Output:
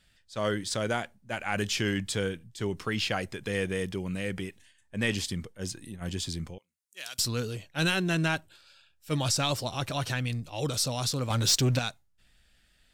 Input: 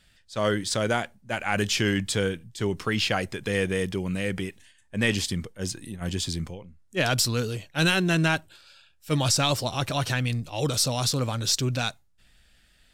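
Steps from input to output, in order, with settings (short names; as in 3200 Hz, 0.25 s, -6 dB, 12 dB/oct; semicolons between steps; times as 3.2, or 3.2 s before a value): 6.58–7.19 differentiator; 11.3–11.79 sample leveller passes 2; gain -4.5 dB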